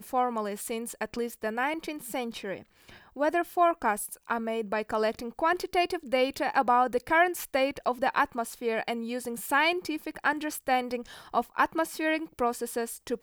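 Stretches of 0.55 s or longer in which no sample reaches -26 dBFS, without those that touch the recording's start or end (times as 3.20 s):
2.52–3.20 s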